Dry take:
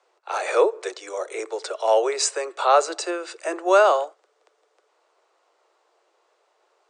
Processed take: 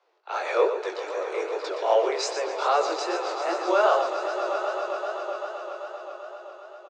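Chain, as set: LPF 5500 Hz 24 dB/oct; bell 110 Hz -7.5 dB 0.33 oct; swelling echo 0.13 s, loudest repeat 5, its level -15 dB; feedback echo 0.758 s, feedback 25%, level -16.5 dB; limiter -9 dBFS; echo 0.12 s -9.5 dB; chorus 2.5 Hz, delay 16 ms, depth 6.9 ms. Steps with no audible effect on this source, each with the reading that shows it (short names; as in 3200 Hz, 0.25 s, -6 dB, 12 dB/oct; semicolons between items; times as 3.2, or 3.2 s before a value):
bell 110 Hz: input band starts at 300 Hz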